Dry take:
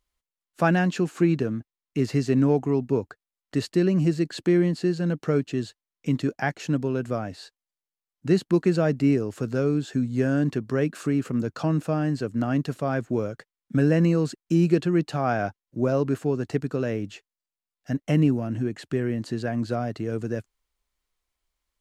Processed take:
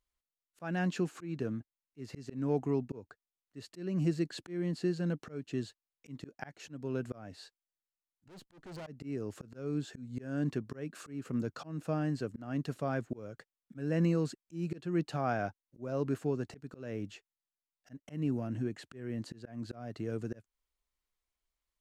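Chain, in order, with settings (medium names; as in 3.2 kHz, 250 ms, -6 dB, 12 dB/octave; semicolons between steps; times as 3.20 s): 8.28–8.87 s: valve stage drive 34 dB, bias 0.7; slow attack 272 ms; trim -8 dB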